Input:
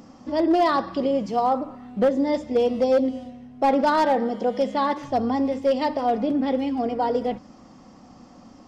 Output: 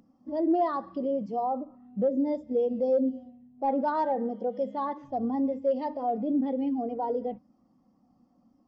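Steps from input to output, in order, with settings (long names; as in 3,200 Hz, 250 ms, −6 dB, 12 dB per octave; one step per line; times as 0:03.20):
0:01.20–0:03.68: dynamic equaliser 1,500 Hz, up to −4 dB, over −36 dBFS, Q 0.97
brickwall limiter −17.5 dBFS, peak gain reduction 4 dB
every bin expanded away from the loudest bin 1.5 to 1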